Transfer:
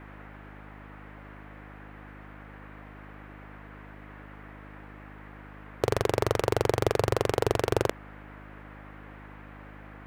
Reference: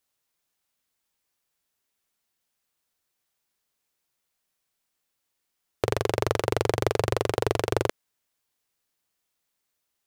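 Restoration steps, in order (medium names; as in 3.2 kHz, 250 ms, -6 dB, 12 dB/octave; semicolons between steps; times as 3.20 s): clip repair -9.5 dBFS; de-hum 51.2 Hz, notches 6; noise print and reduce 30 dB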